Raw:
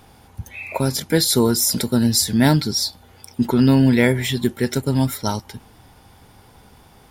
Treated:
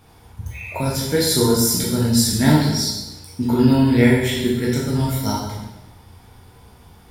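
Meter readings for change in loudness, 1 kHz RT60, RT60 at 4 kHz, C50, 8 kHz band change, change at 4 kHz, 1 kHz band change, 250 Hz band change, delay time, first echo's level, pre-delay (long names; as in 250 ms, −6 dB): +0.5 dB, 1.0 s, 0.95 s, 1.5 dB, −0.5 dB, −0.5 dB, +0.5 dB, +0.5 dB, no echo audible, no echo audible, 5 ms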